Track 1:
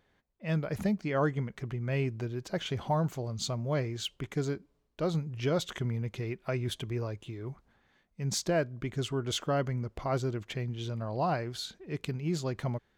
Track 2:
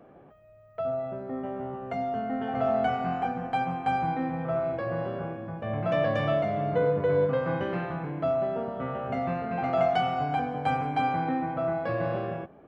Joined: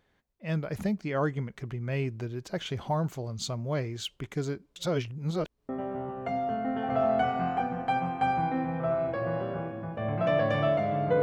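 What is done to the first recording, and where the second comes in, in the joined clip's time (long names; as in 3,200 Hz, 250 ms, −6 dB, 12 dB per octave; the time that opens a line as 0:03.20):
track 1
0:04.76–0:05.69: reverse
0:05.69: continue with track 2 from 0:01.34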